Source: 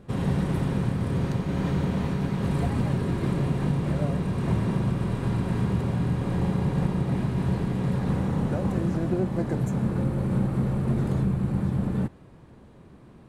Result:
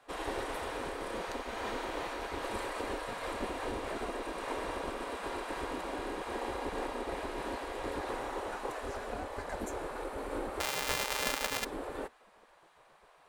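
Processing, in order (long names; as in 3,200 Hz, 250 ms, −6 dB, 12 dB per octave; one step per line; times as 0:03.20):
0:10.60–0:11.65: samples sorted by size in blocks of 128 samples
gate on every frequency bin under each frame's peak −15 dB weak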